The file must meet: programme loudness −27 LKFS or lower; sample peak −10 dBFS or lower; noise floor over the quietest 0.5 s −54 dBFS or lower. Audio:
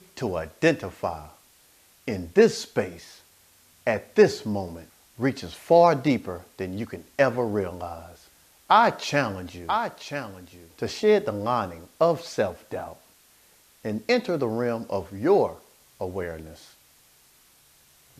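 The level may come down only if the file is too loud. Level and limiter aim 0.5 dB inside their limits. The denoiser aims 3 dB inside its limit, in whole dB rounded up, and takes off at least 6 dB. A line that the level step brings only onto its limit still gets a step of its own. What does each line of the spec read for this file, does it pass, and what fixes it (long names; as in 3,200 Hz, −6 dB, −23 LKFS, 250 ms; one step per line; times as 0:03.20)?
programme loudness −25.0 LKFS: out of spec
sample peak −5.5 dBFS: out of spec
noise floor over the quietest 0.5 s −58 dBFS: in spec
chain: level −2.5 dB
brickwall limiter −10.5 dBFS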